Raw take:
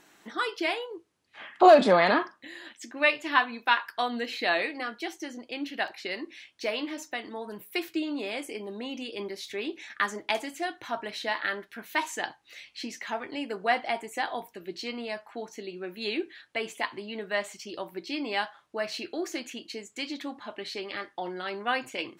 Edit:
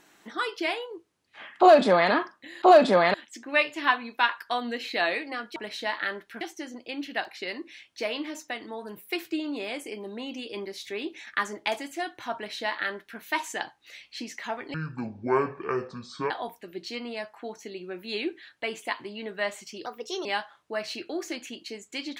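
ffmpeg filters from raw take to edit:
-filter_complex "[0:a]asplit=9[a][b][c][d][e][f][g][h][i];[a]atrim=end=2.622[j];[b]atrim=start=1.588:end=2.112[k];[c]atrim=start=2.618:end=5.042[l];[d]atrim=start=10.978:end=11.832[m];[e]atrim=start=5.038:end=13.374[n];[f]atrim=start=13.37:end=14.23,asetpts=PTS-STARTPTS,asetrate=24255,aresample=44100,atrim=end_sample=68956,asetpts=PTS-STARTPTS[o];[g]atrim=start=14.226:end=17.784[p];[h]atrim=start=17.78:end=18.29,asetpts=PTS-STARTPTS,asetrate=56448,aresample=44100,atrim=end_sample=17571,asetpts=PTS-STARTPTS[q];[i]atrim=start=18.286[r];[j][k]acrossfade=d=0.004:c1=hsin:c2=hsin[s];[s][l]acrossfade=d=0.004:c1=hsin:c2=hsin[t];[t][m]acrossfade=d=0.004:c1=hsin:c2=hsin[u];[u][n]acrossfade=d=0.004:c1=hsin:c2=hsin[v];[v][o]acrossfade=d=0.004:c1=hsin:c2=hsin[w];[w][p]acrossfade=d=0.004:c1=hsin:c2=hsin[x];[x][q]acrossfade=d=0.004:c1=hsin:c2=hsin[y];[y][r]acrossfade=d=0.004:c1=hsin:c2=hsin"

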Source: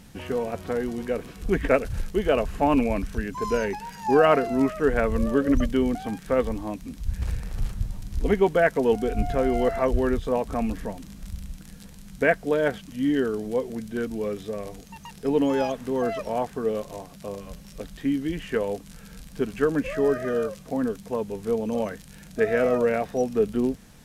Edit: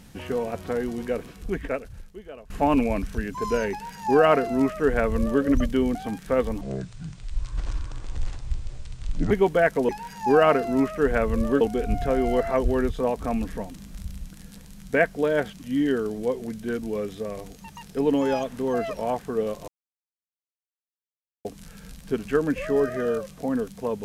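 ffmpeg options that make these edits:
-filter_complex "[0:a]asplit=8[a][b][c][d][e][f][g][h];[a]atrim=end=2.5,asetpts=PTS-STARTPTS,afade=t=out:st=1.15:d=1.35:c=qua:silence=0.0891251[i];[b]atrim=start=2.5:end=6.614,asetpts=PTS-STARTPTS,afade=t=in:d=0.004:c=hsin:silence=0.0891251[j];[c]atrim=start=6.61:end=8.31,asetpts=PTS-STARTPTS,asetrate=27783,aresample=44100[k];[d]atrim=start=8.306:end=8.892[l];[e]atrim=start=3.708:end=5.432[m];[f]atrim=start=8.888:end=16.96,asetpts=PTS-STARTPTS,afade=t=out:st=8.068:d=0.004:c=hsin[n];[g]atrim=start=16.96:end=18.73,asetpts=PTS-STARTPTS,volume=0[o];[h]atrim=start=18.73,asetpts=PTS-STARTPTS,afade=t=in:d=0.004:c=hsin[p];[i][j]concat=n=2:v=0:a=1[q];[q][k]acrossfade=d=0.004:c1=hsin:c2=hsin[r];[r][l]acrossfade=d=0.004:c1=hsin:c2=hsin[s];[s][m]acrossfade=d=0.004:c1=hsin:c2=hsin[t];[n][o][p]concat=n=3:v=0:a=1[u];[t][u]acrossfade=d=0.004:c1=hsin:c2=hsin"

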